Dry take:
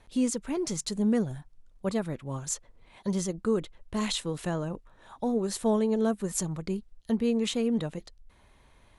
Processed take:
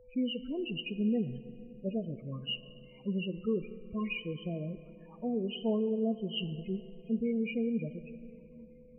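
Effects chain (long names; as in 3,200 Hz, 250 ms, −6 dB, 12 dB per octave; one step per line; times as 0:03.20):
hearing-aid frequency compression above 2,100 Hz 4 to 1
low-shelf EQ 360 Hz +2.5 dB
spectral peaks only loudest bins 8
on a send at −13.5 dB: convolution reverb RT60 3.2 s, pre-delay 5 ms
on the sum: steady tone 500 Hz −50 dBFS
level −6.5 dB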